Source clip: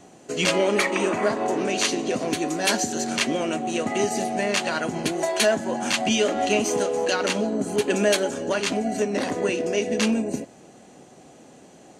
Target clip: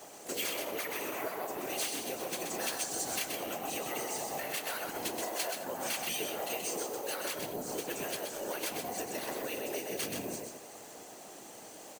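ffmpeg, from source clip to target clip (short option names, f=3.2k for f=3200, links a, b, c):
-filter_complex "[0:a]lowpass=9.4k,acrusher=samples=3:mix=1:aa=0.000001,highpass=410,acompressor=threshold=-35dB:ratio=20,aemphasis=mode=production:type=cd,afftfilt=real='hypot(re,im)*cos(2*PI*random(0))':imag='hypot(re,im)*sin(2*PI*random(1))':win_size=512:overlap=0.75,asplit=4[a][b][c][d];[b]asetrate=33038,aresample=44100,atempo=1.33484,volume=-10dB[e];[c]asetrate=58866,aresample=44100,atempo=0.749154,volume=-14dB[f];[d]asetrate=66075,aresample=44100,atempo=0.66742,volume=-14dB[g];[a][e][f][g]amix=inputs=4:normalize=0,asplit=2[h][i];[i]aecho=0:1:128|210:0.562|0.126[j];[h][j]amix=inputs=2:normalize=0,volume=5dB"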